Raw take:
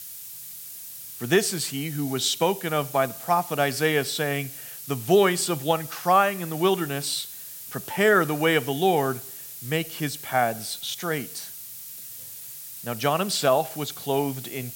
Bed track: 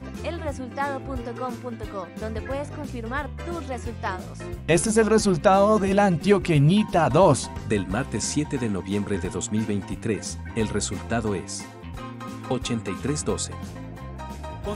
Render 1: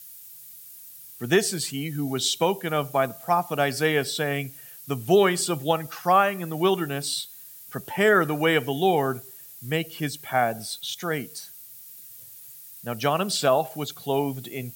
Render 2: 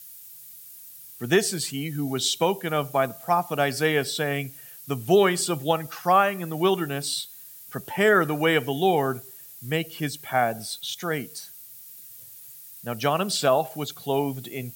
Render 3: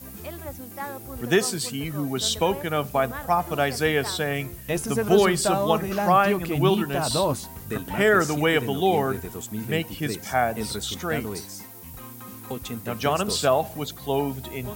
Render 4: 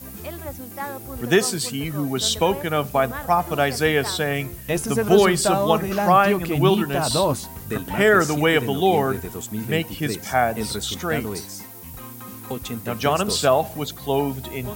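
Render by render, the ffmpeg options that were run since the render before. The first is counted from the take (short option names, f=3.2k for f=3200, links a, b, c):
-af "afftdn=nr=9:nf=-40"
-af anull
-filter_complex "[1:a]volume=-7dB[a];[0:a][a]amix=inputs=2:normalize=0"
-af "volume=3dB"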